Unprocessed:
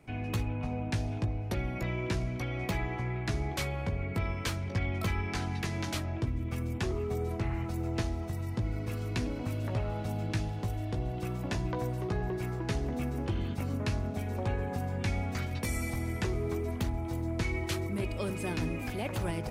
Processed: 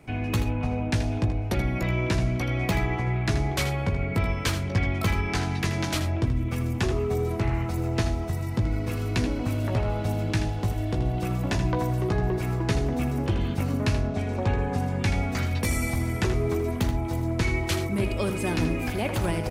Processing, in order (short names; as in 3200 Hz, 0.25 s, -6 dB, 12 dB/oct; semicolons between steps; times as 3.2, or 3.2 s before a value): 13.99–14.98 LPF 5700 Hz -> 12000 Hz 12 dB/oct; on a send: echo 80 ms -10 dB; on the sum: gain +7 dB